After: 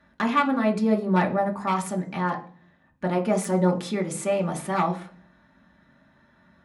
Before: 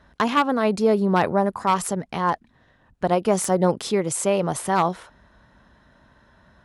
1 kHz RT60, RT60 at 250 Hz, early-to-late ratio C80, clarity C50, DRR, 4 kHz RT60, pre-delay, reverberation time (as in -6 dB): 0.40 s, 0.75 s, 19.0 dB, 13.5 dB, 0.5 dB, 0.55 s, 3 ms, 0.45 s